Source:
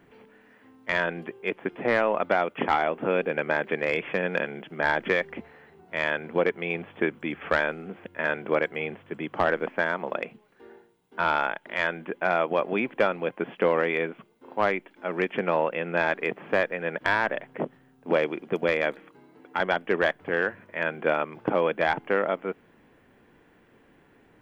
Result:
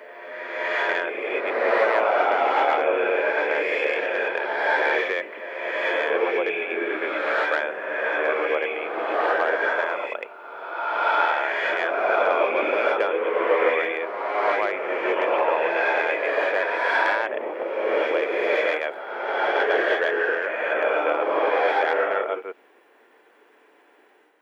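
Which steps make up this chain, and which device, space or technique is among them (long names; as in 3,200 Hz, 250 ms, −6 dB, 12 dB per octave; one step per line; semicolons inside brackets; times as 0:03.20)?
ghost voice (reversed playback; convolution reverb RT60 2.1 s, pre-delay 96 ms, DRR −5.5 dB; reversed playback; high-pass filter 400 Hz 24 dB per octave)
level −1.5 dB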